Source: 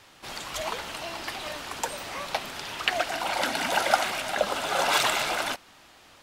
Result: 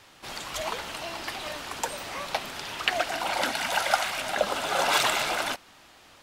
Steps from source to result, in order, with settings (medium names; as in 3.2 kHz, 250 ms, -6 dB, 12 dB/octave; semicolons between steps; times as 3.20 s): 3.51–4.18 s: peaking EQ 310 Hz -9 dB 1.6 oct